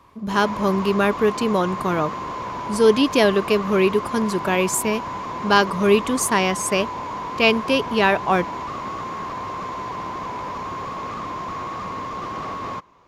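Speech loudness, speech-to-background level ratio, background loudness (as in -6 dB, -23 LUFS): -20.0 LUFS, 9.5 dB, -29.5 LUFS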